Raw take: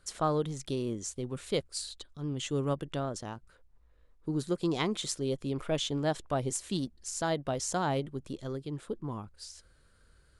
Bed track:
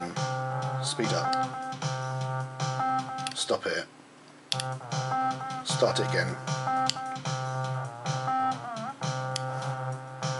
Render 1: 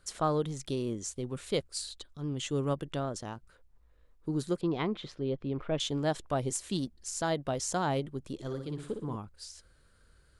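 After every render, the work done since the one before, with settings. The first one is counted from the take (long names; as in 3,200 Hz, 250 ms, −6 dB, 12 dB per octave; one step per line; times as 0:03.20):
0:04.61–0:05.80: high-frequency loss of the air 320 metres
0:08.34–0:09.16: flutter between parallel walls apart 10.1 metres, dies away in 0.54 s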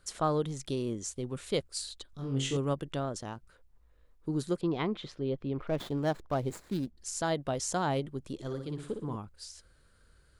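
0:02.11–0:02.57: flutter between parallel walls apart 3.8 metres, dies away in 0.4 s
0:05.67–0:06.97: running median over 15 samples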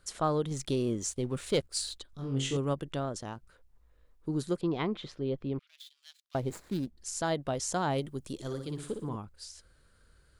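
0:00.51–0:01.99: leveller curve on the samples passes 1
0:05.59–0:06.35: four-pole ladder high-pass 2,700 Hz, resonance 30%
0:07.98–0:09.09: high-shelf EQ 5,100 Hz +11 dB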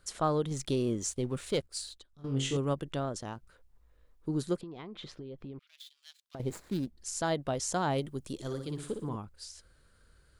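0:01.24–0:02.24: fade out, to −14.5 dB
0:04.57–0:06.40: downward compressor 16 to 1, threshold −39 dBFS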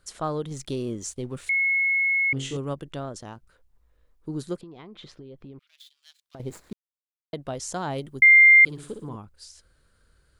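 0:01.49–0:02.33: beep over 2,180 Hz −19.5 dBFS
0:06.73–0:07.33: silence
0:08.22–0:08.65: beep over 2,100 Hz −9.5 dBFS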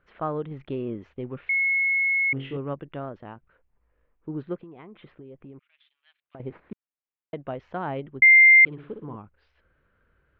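Butterworth low-pass 2,700 Hz 36 dB per octave
low-shelf EQ 76 Hz −9 dB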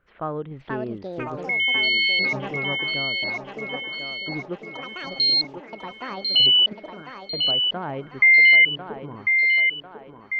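delay with pitch and tempo change per echo 544 ms, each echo +6 semitones, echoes 2
feedback echo with a high-pass in the loop 1,047 ms, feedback 50%, high-pass 290 Hz, level −5.5 dB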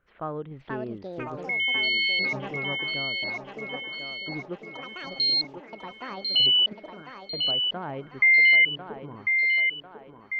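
level −4 dB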